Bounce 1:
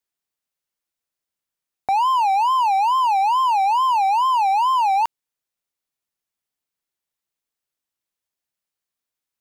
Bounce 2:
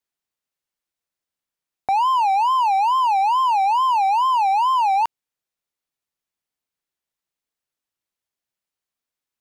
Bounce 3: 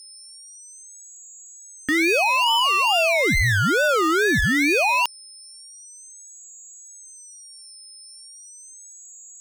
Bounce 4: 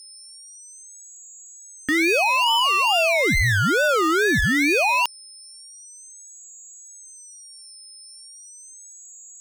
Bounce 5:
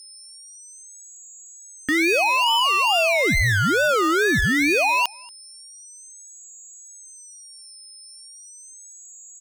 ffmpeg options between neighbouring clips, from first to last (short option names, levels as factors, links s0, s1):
-af "highshelf=f=6600:g=-4"
-af "aeval=exprs='val(0)+0.00251*sin(2*PI*7200*n/s)':c=same,crystalizer=i=4.5:c=0,aeval=exprs='val(0)*sin(2*PI*1200*n/s+1200*0.65/0.38*sin(2*PI*0.38*n/s))':c=same"
-af anull
-filter_complex "[0:a]asplit=2[s0][s1];[s1]adelay=233.2,volume=0.0562,highshelf=f=4000:g=-5.25[s2];[s0][s2]amix=inputs=2:normalize=0"